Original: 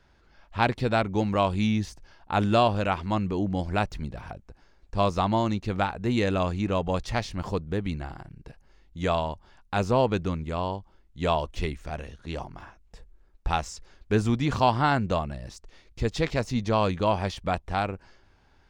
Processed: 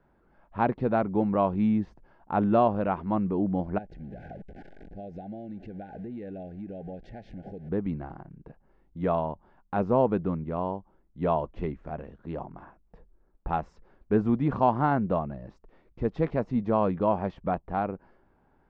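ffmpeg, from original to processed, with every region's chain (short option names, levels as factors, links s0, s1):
-filter_complex "[0:a]asettb=1/sr,asplit=3[s0][s1][s2];[s0]atrim=end=3.784[s3];[s1]atrim=start=3.78:end=7.69,asetpts=PTS-STARTPTS,afade=t=in:d=0.004:c=qsin,afade=t=out:st=3.906:d=0.004:c=qsin,aeval=exprs='val(0)+0.5*0.0168*sgn(val(0))':c=same,acompressor=threshold=0.0178:ratio=8:attack=3.2:release=140:knee=1:detection=peak,asuperstop=centerf=1100:order=20:qfactor=1.8[s4];[s2]atrim=start=7.686[s5];[s3][s4]acrossfade=d=0.004:c1=hsin:c2=qsin[s6];[s6][s5]acrossfade=d=0.004:c1=qsin:c2=hsin,lowpass=1100,lowshelf=f=130:t=q:w=1.5:g=-6.5"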